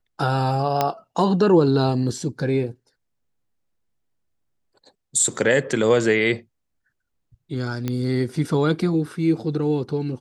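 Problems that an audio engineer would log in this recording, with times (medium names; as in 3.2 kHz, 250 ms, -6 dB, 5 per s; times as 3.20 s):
0.81 s: pop -6 dBFS
7.88 s: pop -12 dBFS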